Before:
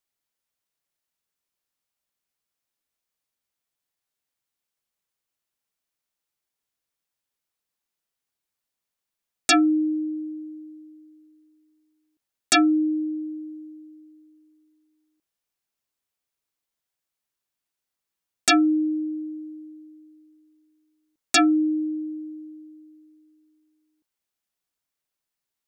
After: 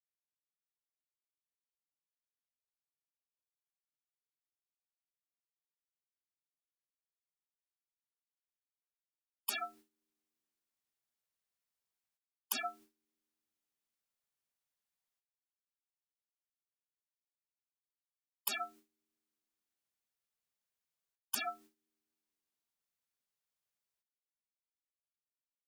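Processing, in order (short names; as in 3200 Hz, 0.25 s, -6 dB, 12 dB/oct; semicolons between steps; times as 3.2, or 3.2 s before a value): spectral gate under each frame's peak -30 dB weak; gate with hold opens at -58 dBFS; gain +14 dB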